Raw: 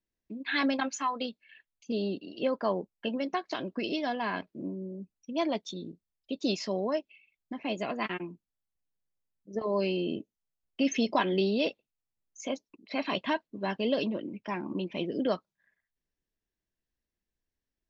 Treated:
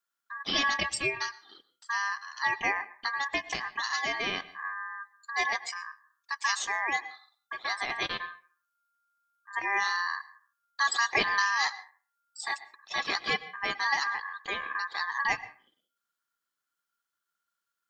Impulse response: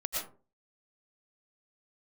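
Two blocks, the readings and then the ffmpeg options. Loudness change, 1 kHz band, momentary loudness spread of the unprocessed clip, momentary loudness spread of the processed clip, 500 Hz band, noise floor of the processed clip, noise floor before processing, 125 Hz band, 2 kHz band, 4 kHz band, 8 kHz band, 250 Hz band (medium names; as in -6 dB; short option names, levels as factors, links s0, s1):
+2.0 dB, +4.5 dB, 12 LU, 13 LU, -11.0 dB, under -85 dBFS, under -85 dBFS, -10.5 dB, +10.5 dB, +5.0 dB, no reading, -15.5 dB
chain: -filter_complex "[0:a]asplit=2[s0][s1];[1:a]atrim=start_sample=2205,lowpass=3700[s2];[s1][s2]afir=irnorm=-1:irlink=0,volume=0.112[s3];[s0][s3]amix=inputs=2:normalize=0,aeval=exprs='val(0)*sin(2*PI*1400*n/s)':c=same,highshelf=f=3000:g=10.5"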